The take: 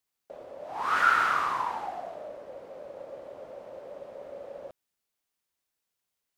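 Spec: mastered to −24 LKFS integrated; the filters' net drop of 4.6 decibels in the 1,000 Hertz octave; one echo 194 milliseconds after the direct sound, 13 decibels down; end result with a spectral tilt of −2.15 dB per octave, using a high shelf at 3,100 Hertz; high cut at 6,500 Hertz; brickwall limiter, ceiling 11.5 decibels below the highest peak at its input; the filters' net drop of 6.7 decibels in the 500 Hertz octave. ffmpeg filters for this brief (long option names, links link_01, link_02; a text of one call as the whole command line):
ffmpeg -i in.wav -af "lowpass=6500,equalizer=frequency=500:width_type=o:gain=-6,equalizer=frequency=1000:width_type=o:gain=-7,highshelf=frequency=3100:gain=6.5,alimiter=level_in=0.5dB:limit=-24dB:level=0:latency=1,volume=-0.5dB,aecho=1:1:194:0.224,volume=12.5dB" out.wav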